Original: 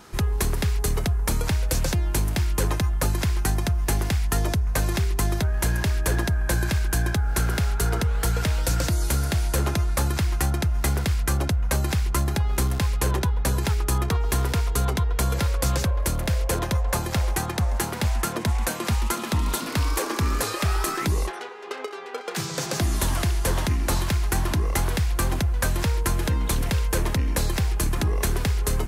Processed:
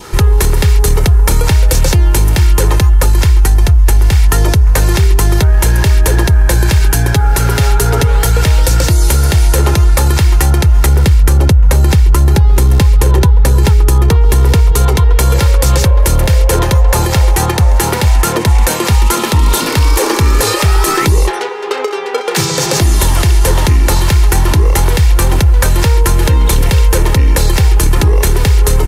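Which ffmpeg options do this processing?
-filter_complex "[0:a]asettb=1/sr,asplit=3[a][b][c];[a]atrim=end=2.594[d];[b]atrim=start=2.59:end=4.12,asetpts=PTS-STARTPTS,afade=t=in:d=0.004:c=qsin,afade=t=out:st=1.526:d=0.004:c=qsin,asubboost=boost=8:cutoff=75[e];[c]atrim=start=4.116[f];[d][e]acrossfade=d=0.004:c1=hsin:c2=qsin[g];[g][f]acrossfade=d=0.004:c1=qsin:c2=hsin,asettb=1/sr,asplit=3[h][i][j];[h]atrim=end=6.794[k];[i]atrim=start=6.79:end=8.3,asetpts=PTS-STARTPTS,afade=t=in:d=0.004:c=qsin,afade=t=out:st=1.506:d=0.004:c=qsin,aecho=1:1:7.2:0.53,atrim=end_sample=66591[l];[j]atrim=start=8.296[m];[k][l]acrossfade=d=0.004:c1=hsin:c2=qsin[n];[n][m]acrossfade=d=0.004:c1=qsin:c2=hsin,asettb=1/sr,asplit=3[o][p][q];[o]atrim=end=10.864[r];[p]atrim=start=10.86:end=14.72,asetpts=PTS-STARTPTS,afade=t=in:d=0.004:c=qsin,afade=t=out:st=3.856:d=0.004:c=qsin,lowshelf=f=440:g=7[s];[q]atrim=start=14.716[t];[r][s]acrossfade=d=0.004:c1=hsin:c2=qsin[u];[u][t]acrossfade=d=0.004:c1=qsin:c2=hsin,adynamicequalizer=threshold=0.00501:dfrequency=1400:dqfactor=3.3:tfrequency=1400:tqfactor=3.3:attack=5:release=100:ratio=0.375:range=2:mode=cutabove:tftype=bell,aecho=1:1:2.2:0.41,alimiter=level_in=17.5dB:limit=-1dB:release=50:level=0:latency=1,volume=-1dB"

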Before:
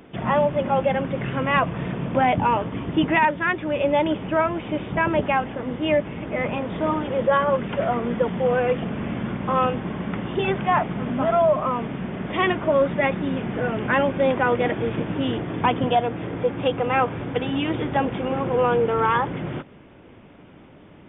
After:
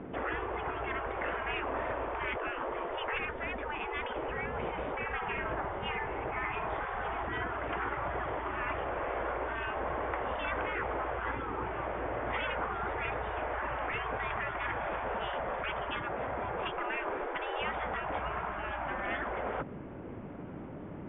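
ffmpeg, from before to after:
-filter_complex "[0:a]asettb=1/sr,asplit=3[a][b][c];[a]atrim=end=2.394[d];[b]atrim=start=2.39:end=4.29,asetpts=PTS-STARTPTS,afade=t=in:d=0.004:c=qsin,afade=t=out:st=1.896:d=0.004:c=qsin,lowshelf=f=260:t=q:w=1.5:g=7.5[e];[c]atrim=start=4.286[f];[d][e]acrossfade=d=0.004:c1=hsin:c2=qsin[g];[g][f]acrossfade=d=0.004:c1=qsin:c2=hsin,asettb=1/sr,asplit=3[h][i][j];[h]atrim=end=4.994[k];[i]atrim=start=4.99:end=7.23,asetpts=PTS-STARTPTS,afade=t=in:d=0.004:c=qsin,afade=t=out:st=2.236:d=0.004:c=qsin,asplit=2[l][m];[m]adelay=67,lowpass=f=1.4k:p=1,volume=-4dB,asplit=2[n][o];[o]adelay=67,lowpass=f=1.4k:p=1,volume=0.33,asplit=2[p][q];[q]adelay=67,lowpass=f=1.4k:p=1,volume=0.33,asplit=2[r][s];[s]adelay=67,lowpass=f=1.4k:p=1,volume=0.33[t];[l][n][p][r][t]amix=inputs=5:normalize=0,atrim=end_sample=98784[u];[j]atrim=start=7.226[v];[k][u]acrossfade=d=0.004:c1=hsin:c2=qsin[w];[w][v]acrossfade=d=0.004:c1=qsin:c2=hsin,asplit=3[x][y][z];[x]afade=t=out:st=16.72:d=0.02[aa];[y]asubboost=boost=8.5:cutoff=140,afade=t=in:st=16.72:d=0.02,afade=t=out:st=17.58:d=0.02[ab];[z]afade=t=in:st=17.58:d=0.02[ac];[aa][ab][ac]amix=inputs=3:normalize=0,lowpass=1.8k,aemphasis=mode=reproduction:type=75fm,afftfilt=real='re*lt(hypot(re,im),0.1)':imag='im*lt(hypot(re,im),0.1)':win_size=1024:overlap=0.75,volume=3.5dB"

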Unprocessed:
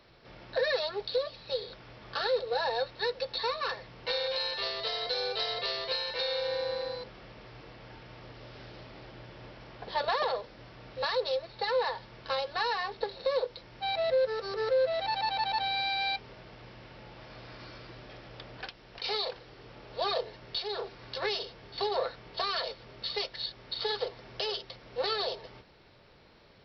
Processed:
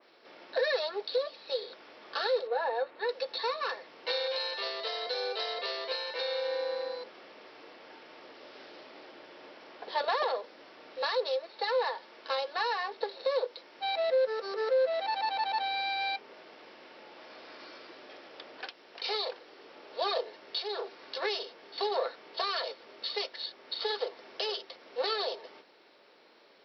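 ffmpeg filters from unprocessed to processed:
-filter_complex "[0:a]asettb=1/sr,asplit=3[a][b][c];[a]atrim=end=2.474[d];[b]atrim=start=2.47:end=3.09,asetpts=PTS-STARTPTS,afade=t=in:d=0.004:c=qsin,afade=t=out:st=0.616:d=0.004:c=qsin,lowpass=2.1k[e];[c]atrim=start=3.086[f];[d][e]acrossfade=d=0.004:c1=hsin:c2=qsin[g];[g][f]acrossfade=d=0.004:c1=qsin:c2=hsin,asettb=1/sr,asplit=3[h][i][j];[h]atrim=end=11.304[k];[i]atrim=start=11.3:end=13.78,asetpts=PTS-STARTPTS,afade=t=in:d=0.004:c=qsin,afade=t=out:st=2.476:d=0.004:c=qsin,equalizer=f=90:t=o:w=1.2:g=-12.5[l];[j]atrim=start=13.776[m];[k][l]acrossfade=d=0.004:c1=hsin:c2=qsin[n];[n][m]acrossfade=d=0.004:c1=qsin:c2=hsin,highpass=f=280:w=0.5412,highpass=f=280:w=1.3066,adynamicequalizer=threshold=0.00501:dfrequency=4200:dqfactor=1.1:tfrequency=4200:tqfactor=1.1:attack=5:release=100:ratio=0.375:range=2:mode=cutabove:tftype=bell"

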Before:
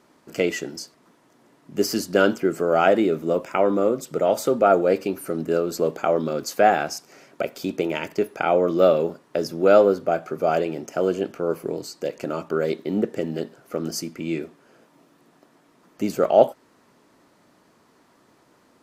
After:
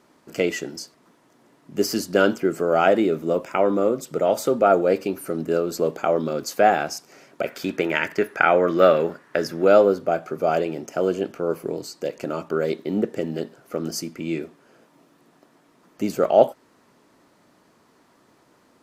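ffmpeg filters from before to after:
-filter_complex "[0:a]asettb=1/sr,asplit=3[a][b][c];[a]atrim=end=7.454[d];[b]atrim=start=7.45:end=9.65,asetpts=PTS-STARTPTS,afade=t=in:d=0.004:c=qsin,afade=t=out:st=2.196:d=0.004:c=qsin,equalizer=f=1.7k:t=o:w=0.92:g=13[e];[c]atrim=start=9.646[f];[d][e]acrossfade=d=0.004:c1=hsin:c2=qsin[g];[g][f]acrossfade=d=0.004:c1=qsin:c2=hsin"

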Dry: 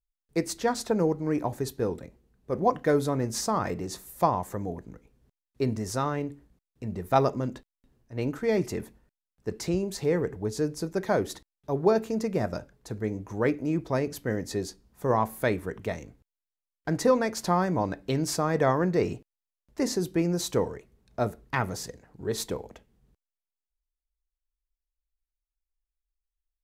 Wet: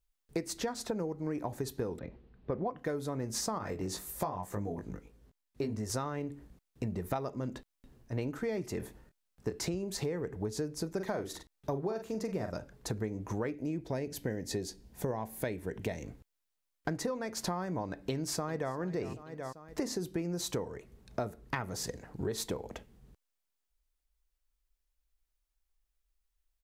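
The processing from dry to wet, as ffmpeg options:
-filter_complex "[0:a]asettb=1/sr,asplit=3[a][b][c];[a]atrim=end=1.994[d];[b]atrim=start=1.99:end=2.77,asetpts=PTS-STARTPTS,afade=t=in:d=0.004:c=qsin,afade=t=out:st=0.776:d=0.004:c=qsin,lowpass=f=3.9k:w=0.5412,lowpass=f=3.9k:w=1.3066[e];[c]atrim=start=2.766[f];[d][e]acrossfade=d=0.004:c1=hsin:c2=qsin[g];[g][f]acrossfade=d=0.004:c1=qsin:c2=hsin,asettb=1/sr,asplit=3[h][i][j];[h]atrim=end=3.584[k];[i]atrim=start=3.58:end=5.9,asetpts=PTS-STARTPTS,afade=t=in:d=0.004:c=qsin,afade=t=out:st=2.316:d=0.004:c=qsin,flanger=delay=19:depth=2.1:speed=1.8[l];[j]atrim=start=5.896[m];[k][l]acrossfade=d=0.004:c1=hsin:c2=qsin[n];[n][m]acrossfade=d=0.004:c1=qsin:c2=hsin,asettb=1/sr,asplit=3[o][p][q];[o]atrim=end=8.784[r];[p]atrim=start=8.78:end=9.65,asetpts=PTS-STARTPTS,afade=t=in:d=0.004:c=qsin,afade=t=out:st=0.866:d=0.004:c=qsin,asplit=2[s][t];[t]adelay=25,volume=-7.5dB[u];[s][u]amix=inputs=2:normalize=0,atrim=end_sample=38367[v];[q]atrim=start=9.646[w];[r][v]acrossfade=d=0.004:c1=hsin:c2=qsin[x];[x][w]acrossfade=d=0.004:c1=qsin:c2=hsin,asplit=3[y][z][aa];[y]afade=t=out:st=10.97:d=0.02[ab];[z]asplit=2[ac][ad];[ad]adelay=43,volume=-7.5dB[ae];[ac][ae]amix=inputs=2:normalize=0,afade=t=in:st=10.97:d=0.02,afade=t=out:st=12.5:d=0.02[af];[aa]afade=t=in:st=12.5:d=0.02[ag];[ab][af][ag]amix=inputs=3:normalize=0,asettb=1/sr,asplit=3[ah][ai][aj];[ah]atrim=end=13.544[ak];[ai]atrim=start=13.54:end=16.03,asetpts=PTS-STARTPTS,afade=t=in:d=0.004:c=qsin,afade=t=out:st=2.486:d=0.004:c=qsin,equalizer=f=1.2k:t=o:w=0.43:g=-11.5[al];[aj]atrim=start=16.026[am];[ak][al]acrossfade=d=0.004:c1=hsin:c2=qsin[an];[an][am]acrossfade=d=0.004:c1=qsin:c2=hsin,asplit=2[ao][ap];[ap]afade=t=in:st=17.98:d=0.01,afade=t=out:st=18.74:d=0.01,aecho=0:1:390|780|1170:0.149624|0.0598494|0.0239398[aq];[ao][aq]amix=inputs=2:normalize=0,acompressor=threshold=-38dB:ratio=16,volume=6.5dB"

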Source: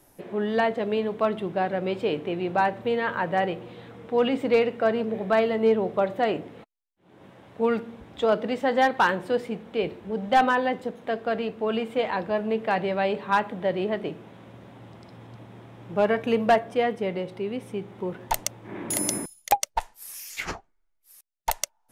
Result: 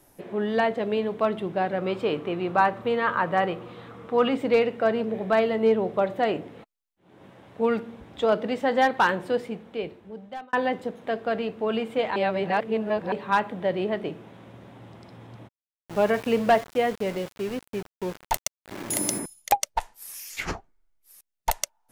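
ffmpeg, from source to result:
-filter_complex "[0:a]asettb=1/sr,asplit=3[a][b][c];[a]atrim=end=1.784[d];[b]atrim=start=1.78:end=4.35,asetpts=PTS-STARTPTS,afade=t=in:d=0.004:c=qsin,afade=t=out:st=2.566:d=0.004:c=qsin,equalizer=f=1.2k:w=3.6:g=10[e];[c]atrim=start=4.346[f];[d][e]acrossfade=d=0.004:c1=hsin:c2=qsin[g];[g][f]acrossfade=d=0.004:c1=qsin:c2=hsin,asplit=3[h][i][j];[h]afade=t=out:st=15.47:d=0.02[k];[i]aeval=exprs='val(0)*gte(abs(val(0)),0.0178)':c=same,afade=t=in:st=15.47:d=0.02,afade=t=out:st=19.18:d=0.02[l];[j]afade=t=in:st=19.18:d=0.02[m];[k][l][m]amix=inputs=3:normalize=0,asettb=1/sr,asplit=3[n][o][p];[n]atrim=end=20.334[q];[o]atrim=start=20.33:end=21.52,asetpts=PTS-STARTPTS,afade=t=in:d=0.004:c=qsin,afade=t=out:st=1.186:d=0.004:c=qsin,lowshelf=f=400:g=5.5[r];[p]atrim=start=21.516[s];[q][r]acrossfade=d=0.004:c1=hsin:c2=qsin[t];[t][s]acrossfade=d=0.004:c1=qsin:c2=hsin,asplit=4[u][v][w][x];[u]atrim=end=10.53,asetpts=PTS-STARTPTS,afade=t=out:st=9.28:d=1.25[y];[v]atrim=start=10.53:end=12.162,asetpts=PTS-STARTPTS,afade=t=in:d=0.004:c=hsin[z];[w]atrim=start=12.158:end=13.122,asetpts=PTS-STARTPTS,areverse[aa];[x]atrim=start=13.118[ab];[y][z]concat=n=2:v=0:a=1[ac];[ac][aa]acrossfade=d=0.004:c1=hsin:c2=hsin[ad];[ad][ab]acrossfade=d=0.004:c1=hsin:c2=hsin"

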